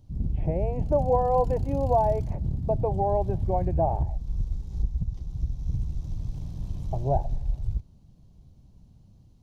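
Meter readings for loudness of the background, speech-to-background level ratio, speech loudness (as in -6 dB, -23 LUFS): -32.0 LUFS, 4.5 dB, -27.5 LUFS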